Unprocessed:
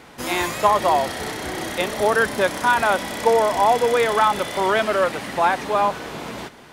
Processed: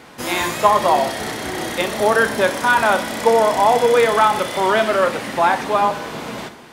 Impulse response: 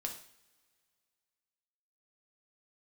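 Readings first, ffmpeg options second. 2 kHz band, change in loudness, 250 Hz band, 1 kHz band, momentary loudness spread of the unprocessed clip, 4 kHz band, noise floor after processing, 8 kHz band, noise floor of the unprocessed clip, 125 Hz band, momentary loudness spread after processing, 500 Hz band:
+3.0 dB, +3.0 dB, +3.5 dB, +2.5 dB, 11 LU, +3.0 dB, -41 dBFS, +3.0 dB, -45 dBFS, +2.5 dB, 11 LU, +3.0 dB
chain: -filter_complex "[0:a]asplit=2[s0][s1];[s1]highpass=57[s2];[1:a]atrim=start_sample=2205[s3];[s2][s3]afir=irnorm=-1:irlink=0,volume=1.41[s4];[s0][s4]amix=inputs=2:normalize=0,volume=0.631"

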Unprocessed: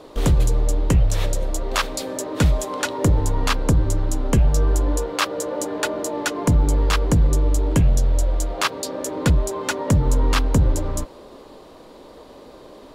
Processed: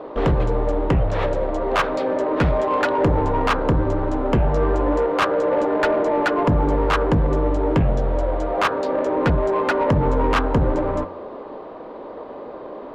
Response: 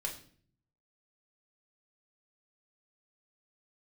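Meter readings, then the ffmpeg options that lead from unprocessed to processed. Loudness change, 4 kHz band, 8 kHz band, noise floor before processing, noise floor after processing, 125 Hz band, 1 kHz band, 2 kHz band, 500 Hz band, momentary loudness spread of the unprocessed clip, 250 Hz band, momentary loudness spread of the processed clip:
+1.0 dB, -5.0 dB, under -15 dB, -44 dBFS, -36 dBFS, -2.5 dB, +7.0 dB, +2.5 dB, +7.5 dB, 7 LU, +2.5 dB, 16 LU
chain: -filter_complex "[0:a]adynamicsmooth=sensitivity=0.5:basefreq=1400,asplit=2[s0][s1];[s1]highpass=f=720:p=1,volume=11.2,asoftclip=type=tanh:threshold=0.376[s2];[s0][s2]amix=inputs=2:normalize=0,lowpass=f=2300:p=1,volume=0.501,bandreject=f=91.03:t=h:w=4,bandreject=f=182.06:t=h:w=4,bandreject=f=273.09:t=h:w=4,bandreject=f=364.12:t=h:w=4,bandreject=f=455.15:t=h:w=4,bandreject=f=546.18:t=h:w=4,bandreject=f=637.21:t=h:w=4,bandreject=f=728.24:t=h:w=4,bandreject=f=819.27:t=h:w=4,bandreject=f=910.3:t=h:w=4,bandreject=f=1001.33:t=h:w=4,bandreject=f=1092.36:t=h:w=4,bandreject=f=1183.39:t=h:w=4,bandreject=f=1274.42:t=h:w=4,bandreject=f=1365.45:t=h:w=4,bandreject=f=1456.48:t=h:w=4,bandreject=f=1547.51:t=h:w=4,bandreject=f=1638.54:t=h:w=4,bandreject=f=1729.57:t=h:w=4,bandreject=f=1820.6:t=h:w=4"

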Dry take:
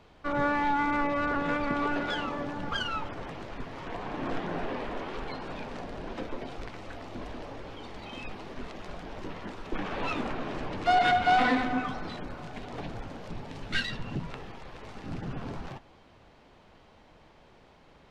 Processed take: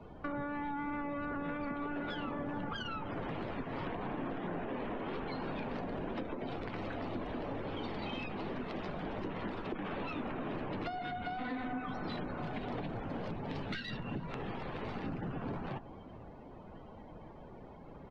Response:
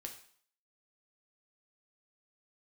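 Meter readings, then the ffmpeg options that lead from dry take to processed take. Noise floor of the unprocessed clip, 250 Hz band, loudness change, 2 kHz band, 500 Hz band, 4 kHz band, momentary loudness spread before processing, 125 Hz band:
-57 dBFS, -4.0 dB, -7.5 dB, -10.5 dB, -5.5 dB, -10.0 dB, 16 LU, -2.0 dB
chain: -filter_complex "[0:a]acompressor=threshold=0.0112:ratio=6,afftdn=nr=18:nf=-58,equalizer=f=200:t=o:w=2.1:g=4.5,asplit=2[s0][s1];[s1]adelay=437.3,volume=0.0708,highshelf=f=4000:g=-9.84[s2];[s0][s2]amix=inputs=2:normalize=0,acrossover=split=89|330[s3][s4][s5];[s3]acompressor=threshold=0.00251:ratio=4[s6];[s4]acompressor=threshold=0.00501:ratio=4[s7];[s5]acompressor=threshold=0.00631:ratio=4[s8];[s6][s7][s8]amix=inputs=3:normalize=0,asoftclip=type=tanh:threshold=0.0282,volume=1.88"

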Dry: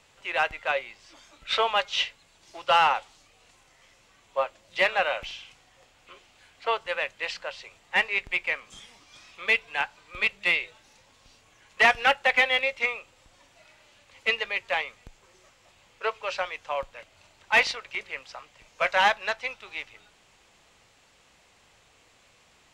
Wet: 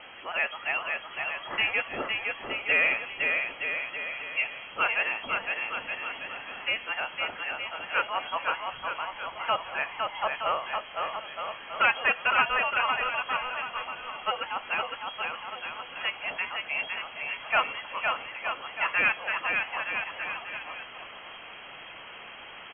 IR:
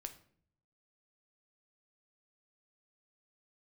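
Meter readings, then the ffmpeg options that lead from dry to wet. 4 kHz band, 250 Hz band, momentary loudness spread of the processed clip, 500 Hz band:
-2.5 dB, +0.5 dB, 12 LU, -5.0 dB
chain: -af "aeval=exprs='val(0)+0.5*0.0178*sgn(val(0))':c=same,aecho=1:1:510|918|1244|1506|1714:0.631|0.398|0.251|0.158|0.1,lowpass=f=2800:t=q:w=0.5098,lowpass=f=2800:t=q:w=0.6013,lowpass=f=2800:t=q:w=0.9,lowpass=f=2800:t=q:w=2.563,afreqshift=-3300,volume=0.631"

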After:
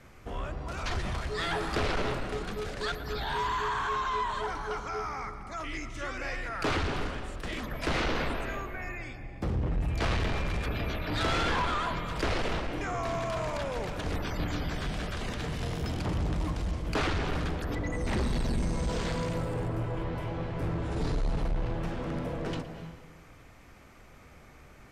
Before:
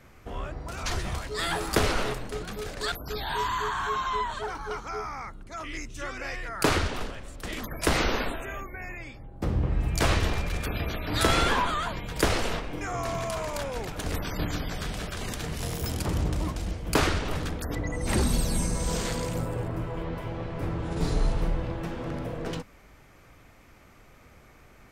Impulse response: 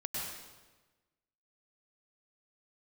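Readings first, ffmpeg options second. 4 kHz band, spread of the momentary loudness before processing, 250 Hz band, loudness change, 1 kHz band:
-4.5 dB, 12 LU, -2.5 dB, -2.5 dB, -2.0 dB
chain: -filter_complex "[0:a]acrossover=split=4700[s0][s1];[s1]acompressor=threshold=0.00282:ratio=4:attack=1:release=60[s2];[s0][s2]amix=inputs=2:normalize=0,asplit=2[s3][s4];[s4]highshelf=f=5500:g=-10.5[s5];[1:a]atrim=start_sample=2205,adelay=116[s6];[s5][s6]afir=irnorm=-1:irlink=0,volume=0.282[s7];[s3][s7]amix=inputs=2:normalize=0,asoftclip=type=tanh:threshold=0.0631,lowpass=12000"

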